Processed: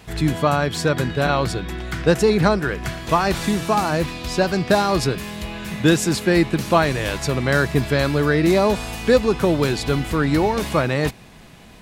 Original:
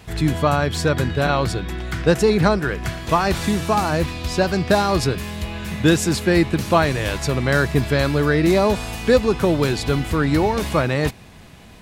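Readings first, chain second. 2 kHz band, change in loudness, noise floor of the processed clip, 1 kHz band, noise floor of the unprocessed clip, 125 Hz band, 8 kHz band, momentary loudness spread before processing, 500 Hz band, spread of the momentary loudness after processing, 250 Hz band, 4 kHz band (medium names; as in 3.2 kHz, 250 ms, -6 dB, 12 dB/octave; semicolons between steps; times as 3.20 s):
0.0 dB, 0.0 dB, -44 dBFS, 0.0 dB, -43 dBFS, -1.5 dB, 0.0 dB, 7 LU, 0.0 dB, 7 LU, 0.0 dB, 0.0 dB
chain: peaking EQ 83 Hz -12 dB 0.37 oct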